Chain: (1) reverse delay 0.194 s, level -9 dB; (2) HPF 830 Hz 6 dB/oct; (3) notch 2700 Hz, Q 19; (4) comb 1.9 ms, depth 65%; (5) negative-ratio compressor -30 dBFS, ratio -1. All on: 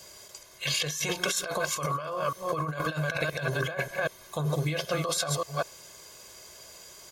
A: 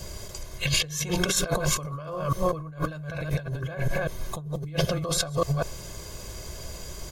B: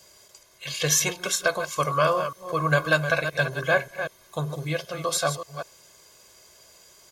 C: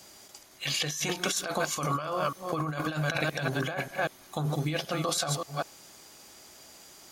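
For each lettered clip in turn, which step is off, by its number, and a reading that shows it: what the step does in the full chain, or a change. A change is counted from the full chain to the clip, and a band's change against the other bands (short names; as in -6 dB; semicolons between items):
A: 2, 2 kHz band -4.5 dB; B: 5, momentary loudness spread change -6 LU; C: 4, 250 Hz band +3.0 dB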